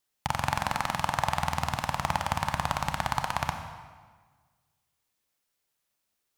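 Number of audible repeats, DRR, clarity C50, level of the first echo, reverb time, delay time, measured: no echo, 6.0 dB, 7.0 dB, no echo, 1.5 s, no echo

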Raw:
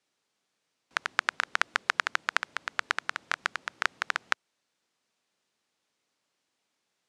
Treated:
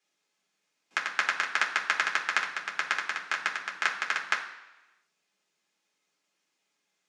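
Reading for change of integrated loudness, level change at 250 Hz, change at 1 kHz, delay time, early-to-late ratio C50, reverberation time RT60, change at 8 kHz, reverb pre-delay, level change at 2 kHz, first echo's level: +1.5 dB, -0.5 dB, 0.0 dB, no echo, 9.0 dB, 1.0 s, +2.0 dB, 3 ms, +1.5 dB, no echo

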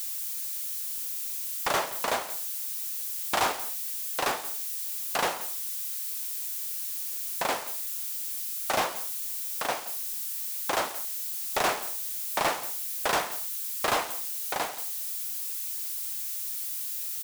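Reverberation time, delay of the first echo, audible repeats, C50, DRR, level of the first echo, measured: no reverb, 173 ms, 1, no reverb, no reverb, -17.0 dB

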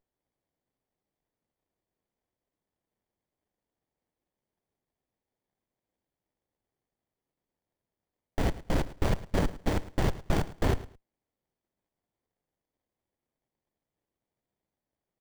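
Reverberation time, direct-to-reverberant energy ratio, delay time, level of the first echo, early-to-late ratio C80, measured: no reverb, no reverb, 108 ms, -17.0 dB, no reverb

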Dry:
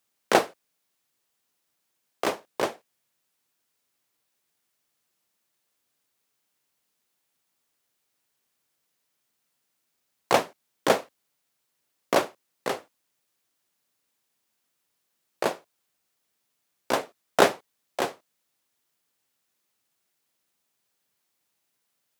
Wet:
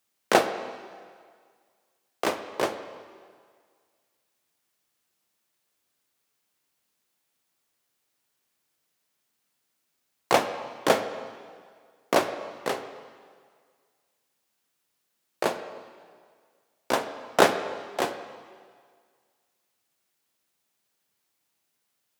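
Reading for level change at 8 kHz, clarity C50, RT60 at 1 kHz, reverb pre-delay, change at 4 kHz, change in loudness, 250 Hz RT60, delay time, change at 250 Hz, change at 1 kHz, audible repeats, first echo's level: 0.0 dB, 10.0 dB, 1.9 s, 3 ms, +0.5 dB, 0.0 dB, 1.7 s, no echo, +1.0 dB, +0.5 dB, no echo, no echo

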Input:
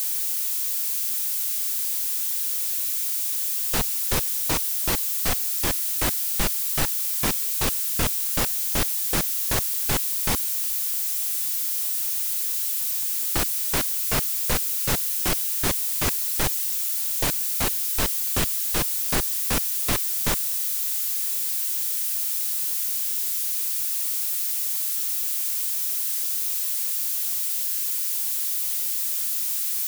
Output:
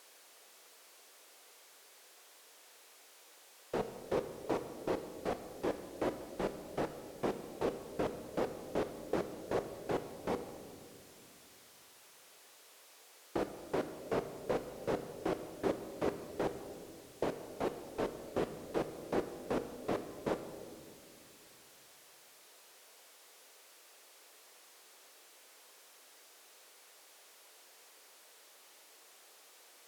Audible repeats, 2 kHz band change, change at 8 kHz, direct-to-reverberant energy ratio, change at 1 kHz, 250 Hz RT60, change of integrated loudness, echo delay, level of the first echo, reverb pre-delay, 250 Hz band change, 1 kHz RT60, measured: no echo, -16.5 dB, -31.0 dB, 9.0 dB, -8.5 dB, 3.2 s, -17.0 dB, no echo, no echo, 3 ms, -6.0 dB, 2.0 s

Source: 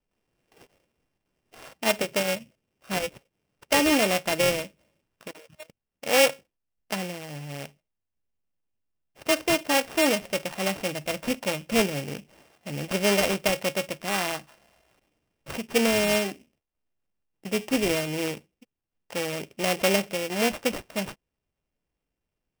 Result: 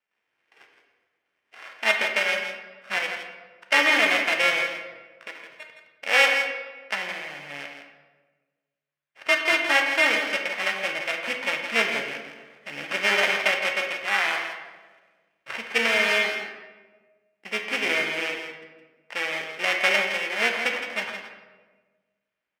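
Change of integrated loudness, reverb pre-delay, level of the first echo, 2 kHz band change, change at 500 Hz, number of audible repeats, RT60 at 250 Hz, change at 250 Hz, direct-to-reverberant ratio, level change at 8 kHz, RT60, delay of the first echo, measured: +2.5 dB, 9 ms, -9.0 dB, +8.5 dB, -3.5 dB, 1, 1.5 s, -10.0 dB, 2.0 dB, -7.0 dB, 1.4 s, 165 ms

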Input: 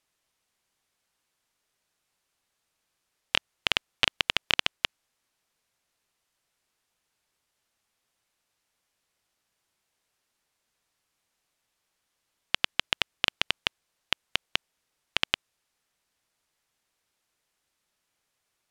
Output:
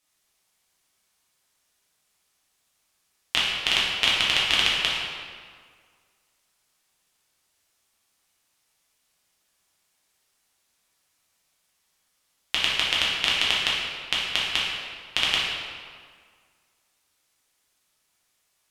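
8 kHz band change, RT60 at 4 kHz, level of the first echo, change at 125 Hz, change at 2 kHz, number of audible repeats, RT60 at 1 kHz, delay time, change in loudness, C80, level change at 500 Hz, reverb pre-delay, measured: +8.5 dB, 1.3 s, no echo, +3.5 dB, +5.5 dB, no echo, 1.9 s, no echo, +5.5 dB, 1.5 dB, +3.5 dB, 5 ms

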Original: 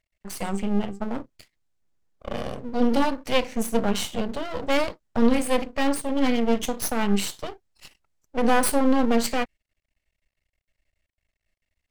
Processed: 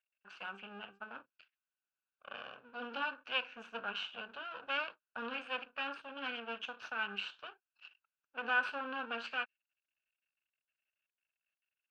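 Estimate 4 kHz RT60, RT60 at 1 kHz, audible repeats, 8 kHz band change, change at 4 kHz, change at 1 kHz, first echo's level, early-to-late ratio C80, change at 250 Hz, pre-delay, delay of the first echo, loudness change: no reverb, no reverb, no echo, under -35 dB, -9.0 dB, -13.5 dB, no echo, no reverb, -28.5 dB, no reverb, no echo, -15.0 dB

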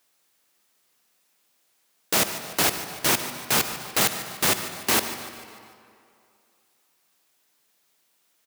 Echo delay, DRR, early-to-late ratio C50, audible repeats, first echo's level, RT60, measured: 148 ms, 8.0 dB, 8.0 dB, 4, -14.5 dB, 2.5 s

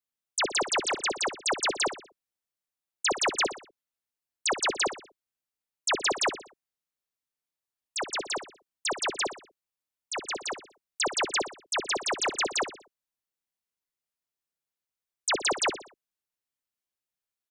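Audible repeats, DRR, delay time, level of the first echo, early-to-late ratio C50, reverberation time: 3, no reverb, 61 ms, -12.0 dB, no reverb, no reverb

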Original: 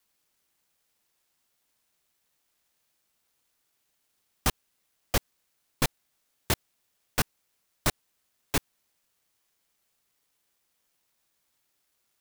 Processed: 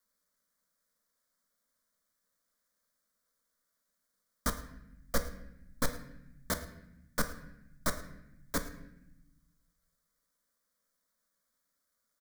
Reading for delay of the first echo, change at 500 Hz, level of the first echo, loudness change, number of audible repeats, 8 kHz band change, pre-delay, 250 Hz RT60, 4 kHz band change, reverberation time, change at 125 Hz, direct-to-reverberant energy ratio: 108 ms, -3.5 dB, -18.5 dB, -6.5 dB, 1, -6.0 dB, 9 ms, 1.5 s, -9.5 dB, 0.85 s, -8.0 dB, 7.0 dB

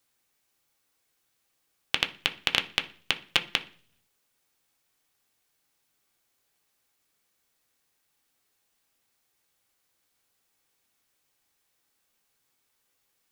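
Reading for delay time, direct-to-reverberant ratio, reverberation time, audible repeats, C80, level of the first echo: no echo, 4.5 dB, 0.50 s, no echo, 21.5 dB, no echo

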